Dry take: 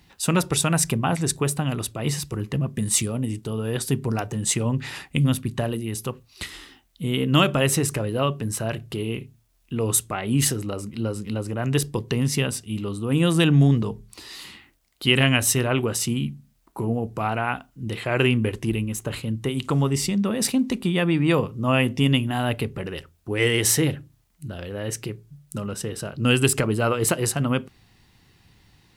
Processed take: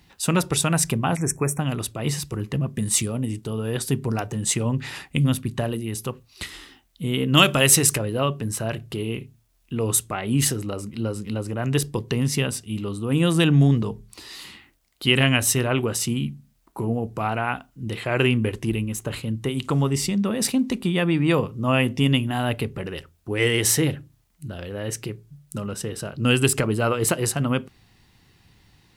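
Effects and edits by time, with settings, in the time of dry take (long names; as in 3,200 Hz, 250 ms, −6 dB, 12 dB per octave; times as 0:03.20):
0:01.17–0:01.60: time-frequency box erased 2,600–5,400 Hz
0:07.37–0:07.98: high-shelf EQ 2,100 Hz +10 dB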